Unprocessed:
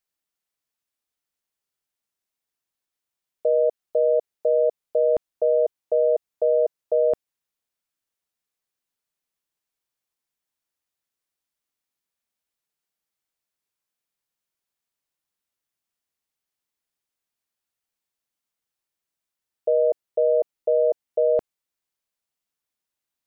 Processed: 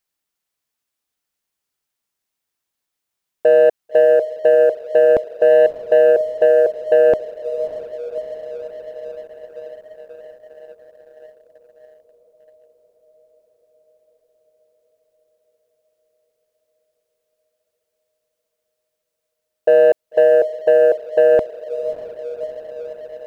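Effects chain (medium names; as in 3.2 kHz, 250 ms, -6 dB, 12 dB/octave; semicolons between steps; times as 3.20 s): echo that smears into a reverb 599 ms, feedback 73%, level -12.5 dB; waveshaping leveller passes 1; trim +7 dB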